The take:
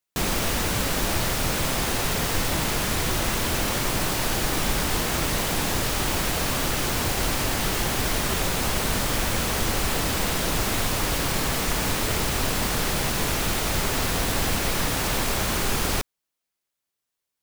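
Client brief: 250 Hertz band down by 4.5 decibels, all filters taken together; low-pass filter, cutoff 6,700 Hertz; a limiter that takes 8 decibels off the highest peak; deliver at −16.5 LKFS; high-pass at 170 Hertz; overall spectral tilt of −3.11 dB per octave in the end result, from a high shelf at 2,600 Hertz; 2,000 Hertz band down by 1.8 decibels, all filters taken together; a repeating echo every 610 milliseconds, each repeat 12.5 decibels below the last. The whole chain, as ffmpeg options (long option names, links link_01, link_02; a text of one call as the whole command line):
ffmpeg -i in.wav -af "highpass=170,lowpass=6700,equalizer=frequency=250:width_type=o:gain=-4.5,equalizer=frequency=2000:width_type=o:gain=-4.5,highshelf=frequency=2600:gain=5,alimiter=limit=-21dB:level=0:latency=1,aecho=1:1:610|1220|1830:0.237|0.0569|0.0137,volume=12dB" out.wav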